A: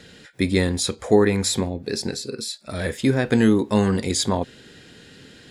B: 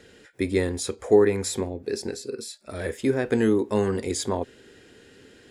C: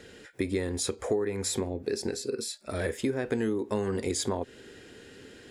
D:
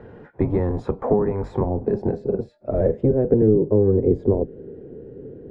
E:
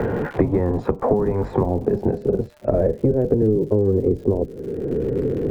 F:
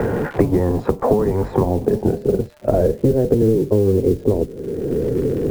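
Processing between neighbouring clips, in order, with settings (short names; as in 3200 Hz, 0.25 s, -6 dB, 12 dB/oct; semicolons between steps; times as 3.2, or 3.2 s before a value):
fifteen-band EQ 160 Hz -8 dB, 400 Hz +6 dB, 4000 Hz -6 dB; gain -5 dB
compressor 6:1, threshold -28 dBFS, peak gain reduction 15.5 dB; gain +2 dB
octaver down 1 oct, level +2 dB; low-pass sweep 930 Hz -> 450 Hz, 1.56–3.57; gain +6 dB
crackle 150/s -40 dBFS; three-band squash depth 100%
modulation noise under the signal 30 dB; record warp 78 rpm, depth 100 cents; gain +2.5 dB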